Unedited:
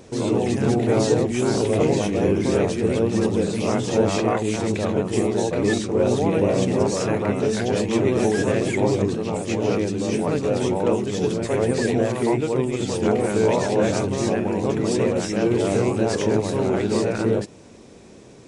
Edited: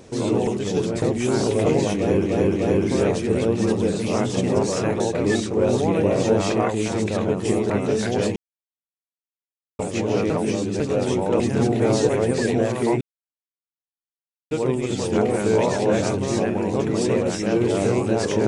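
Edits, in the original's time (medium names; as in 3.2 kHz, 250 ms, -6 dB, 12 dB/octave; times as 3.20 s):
0.47–1.16 s: swap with 10.94–11.49 s
2.10–2.40 s: loop, 3 plays
3.91–5.38 s: swap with 6.61–7.24 s
7.90–9.33 s: mute
9.84–10.34 s: reverse
12.41 s: insert silence 1.50 s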